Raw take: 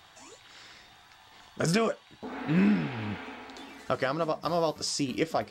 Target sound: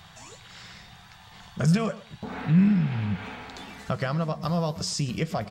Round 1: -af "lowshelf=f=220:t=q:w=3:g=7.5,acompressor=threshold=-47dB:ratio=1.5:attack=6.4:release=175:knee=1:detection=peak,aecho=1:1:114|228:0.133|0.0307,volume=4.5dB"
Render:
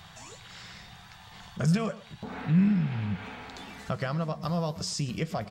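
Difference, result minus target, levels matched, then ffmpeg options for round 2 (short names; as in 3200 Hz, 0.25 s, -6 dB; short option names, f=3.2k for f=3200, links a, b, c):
compressor: peak gain reduction +3 dB
-af "lowshelf=f=220:t=q:w=3:g=7.5,acompressor=threshold=-37.5dB:ratio=1.5:attack=6.4:release=175:knee=1:detection=peak,aecho=1:1:114|228:0.133|0.0307,volume=4.5dB"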